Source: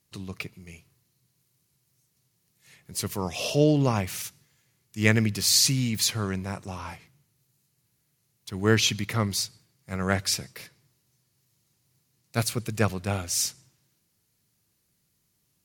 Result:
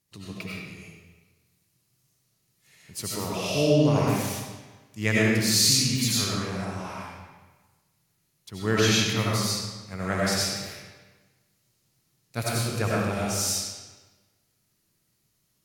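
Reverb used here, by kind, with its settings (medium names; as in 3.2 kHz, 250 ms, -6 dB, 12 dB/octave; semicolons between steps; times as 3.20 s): algorithmic reverb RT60 1.3 s, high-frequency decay 0.85×, pre-delay 50 ms, DRR -6 dB; trim -5 dB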